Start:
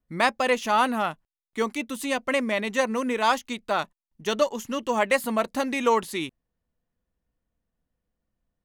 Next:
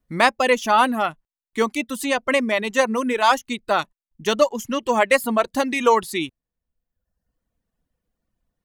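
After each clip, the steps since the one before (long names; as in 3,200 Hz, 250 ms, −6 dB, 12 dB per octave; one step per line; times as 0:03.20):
reverb reduction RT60 0.95 s
level +5.5 dB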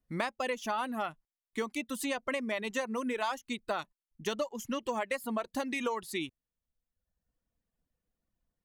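downward compressor 10 to 1, threshold −22 dBFS, peak gain reduction 12.5 dB
level −7.5 dB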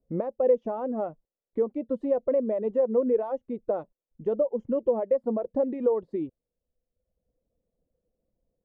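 brickwall limiter −25 dBFS, peak gain reduction 5.5 dB
low-pass with resonance 520 Hz, resonance Q 4
level +4 dB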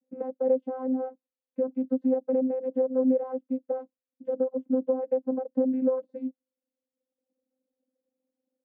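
channel vocoder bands 16, saw 259 Hz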